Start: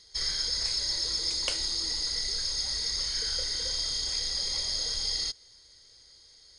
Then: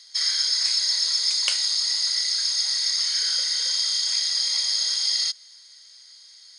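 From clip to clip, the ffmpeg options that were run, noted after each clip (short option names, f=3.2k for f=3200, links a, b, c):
-af "highpass=1.3k,volume=7.5dB"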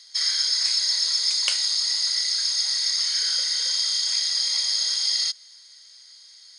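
-af anull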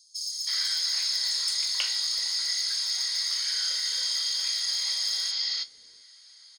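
-filter_complex "[0:a]flanger=delay=9.3:depth=10:regen=60:speed=0.33:shape=sinusoidal,asoftclip=type=tanh:threshold=-16.5dB,acrossover=split=420|5600[a][b][c];[b]adelay=320[d];[a]adelay=700[e];[e][d][c]amix=inputs=3:normalize=0,volume=2.5dB"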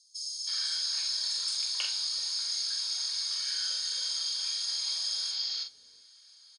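-filter_complex "[0:a]asplit=2[a][b];[b]adelay=45,volume=-6dB[c];[a][c]amix=inputs=2:normalize=0,aresample=22050,aresample=44100,asuperstop=centerf=2000:order=12:qfactor=7.6,volume=-5dB"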